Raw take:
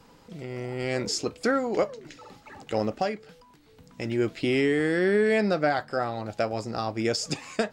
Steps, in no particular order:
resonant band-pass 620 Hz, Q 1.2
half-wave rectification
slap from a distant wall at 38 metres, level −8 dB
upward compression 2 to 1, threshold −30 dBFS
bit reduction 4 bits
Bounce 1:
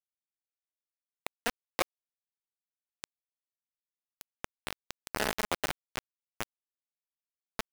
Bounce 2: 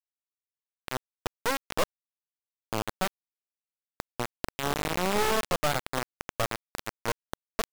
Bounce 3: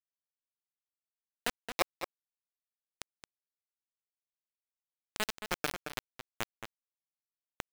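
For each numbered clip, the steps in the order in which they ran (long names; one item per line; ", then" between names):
slap from a distant wall, then half-wave rectification, then resonant band-pass, then upward compression, then bit reduction
resonant band-pass, then half-wave rectification, then upward compression, then slap from a distant wall, then bit reduction
half-wave rectification, then upward compression, then resonant band-pass, then bit reduction, then slap from a distant wall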